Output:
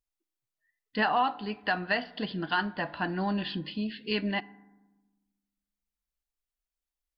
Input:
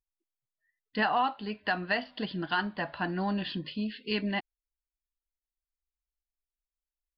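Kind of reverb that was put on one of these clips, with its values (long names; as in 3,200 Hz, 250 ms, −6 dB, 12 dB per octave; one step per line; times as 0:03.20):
feedback delay network reverb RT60 1.1 s, low-frequency decay 1.5×, high-frequency decay 0.35×, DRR 17.5 dB
level +1 dB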